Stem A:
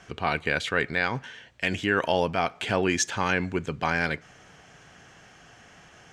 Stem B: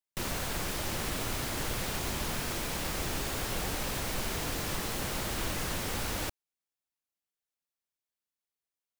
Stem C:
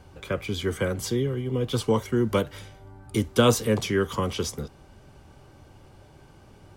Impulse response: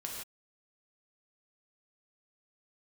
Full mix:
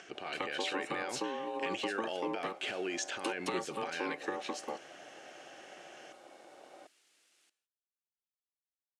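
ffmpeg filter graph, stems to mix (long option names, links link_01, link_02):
-filter_complex "[0:a]alimiter=limit=-20.5dB:level=0:latency=1:release=35,acompressor=mode=upward:threshold=-42dB:ratio=2.5,volume=-6dB[link_01];[1:a]aeval=exprs='(mod(39.8*val(0)+1,2)-1)/39.8':channel_layout=same,alimiter=level_in=17dB:limit=-24dB:level=0:latency=1,volume=-17dB,highpass=frequency=570:poles=1,adelay=1200,volume=-19dB,asplit=2[link_02][link_03];[link_03]volume=-16.5dB[link_04];[2:a]adynamicequalizer=threshold=0.00891:dfrequency=1500:dqfactor=0.7:tfrequency=1500:tqfactor=0.7:attack=5:release=100:ratio=0.375:range=3:mode=cutabove:tftype=highshelf,adelay=100,volume=0dB[link_05];[link_02][link_05]amix=inputs=2:normalize=0,aeval=exprs='val(0)*sin(2*PI*670*n/s)':channel_layout=same,acompressor=threshold=-31dB:ratio=12,volume=0dB[link_06];[3:a]atrim=start_sample=2205[link_07];[link_04][link_07]afir=irnorm=-1:irlink=0[link_08];[link_01][link_06][link_08]amix=inputs=3:normalize=0,highpass=330,equalizer=frequency=340:width_type=q:width=4:gain=7,equalizer=frequency=1000:width_type=q:width=4:gain=-8,equalizer=frequency=2800:width_type=q:width=4:gain=4,lowpass=frequency=9700:width=0.5412,lowpass=frequency=9700:width=1.3066"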